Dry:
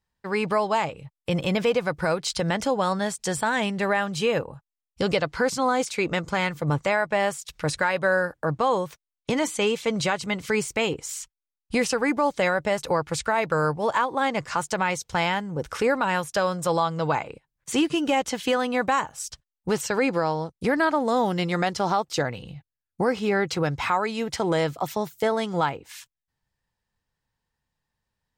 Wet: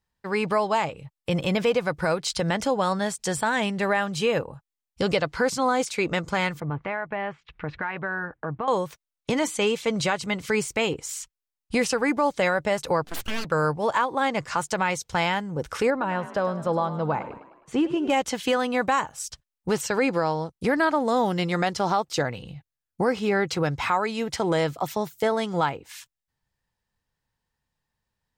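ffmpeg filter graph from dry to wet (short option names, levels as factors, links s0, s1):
-filter_complex "[0:a]asettb=1/sr,asplit=3[s0][s1][s2];[s0]atrim=end=6.604[s3];[s1]atrim=start=6.6:end=8.68,asetpts=PTS-STARTPTS,afade=t=in:d=0.004:c=qsin,afade=t=out:st=2.076:d=0.004:c=qsin,lowpass=f=2600:w=0.5412,lowpass=f=2600:w=1.3066,bandreject=f=550:w=5.1,acompressor=threshold=0.0355:ratio=2:attack=3.2:release=140:knee=1:detection=peak[s4];[s2]atrim=start=8.676[s5];[s3][s4]acrossfade=d=0.004:c1=hsin:c2=qsin[s6];[s6][s5]acrossfade=d=0.004:c1=qsin:c2=hsin,asettb=1/sr,asplit=3[s7][s8][s9];[s7]atrim=end=13.044[s10];[s8]atrim=start=13.04:end=13.45,asetpts=PTS-STARTPTS,afade=t=in:d=0.004:c=qsin,afade=t=out:st=0.406:d=0.004:c=qsin,equalizer=f=480:t=o:w=1.1:g=-13,aeval=exprs='abs(val(0))':c=same[s11];[s9]atrim=start=13.446[s12];[s10][s11]acrossfade=d=0.004:c1=hsin:c2=qsin[s13];[s13][s12]acrossfade=d=0.004:c1=qsin:c2=hsin,asettb=1/sr,asplit=3[s14][s15][s16];[s14]atrim=end=15.904[s17];[s15]atrim=start=15.9:end=18.1,asetpts=PTS-STARTPTS,afade=t=in:d=0.004:c=qsin,afade=t=out:st=2.196:d=0.004:c=qsin,lowpass=f=1000:p=1,asplit=6[s18][s19][s20][s21][s22][s23];[s19]adelay=104,afreqshift=42,volume=0.2[s24];[s20]adelay=208,afreqshift=84,volume=0.1[s25];[s21]adelay=312,afreqshift=126,volume=0.0501[s26];[s22]adelay=416,afreqshift=168,volume=0.0248[s27];[s23]adelay=520,afreqshift=210,volume=0.0124[s28];[s18][s24][s25][s26][s27][s28]amix=inputs=6:normalize=0,atrim=end_sample=97020[s29];[s16]atrim=start=18.096[s30];[s17][s29]acrossfade=d=0.004:c1=hsin:c2=qsin[s31];[s31][s30]acrossfade=d=0.004:c1=qsin:c2=hsin"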